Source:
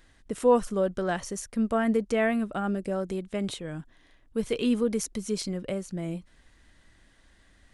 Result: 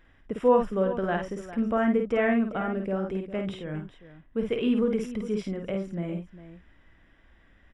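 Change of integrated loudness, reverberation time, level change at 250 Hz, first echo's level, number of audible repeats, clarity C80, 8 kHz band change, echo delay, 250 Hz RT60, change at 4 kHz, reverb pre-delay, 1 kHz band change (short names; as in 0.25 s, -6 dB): +1.0 dB, none, +1.0 dB, -5.0 dB, 2, none, under -15 dB, 52 ms, none, -5.0 dB, none, +1.5 dB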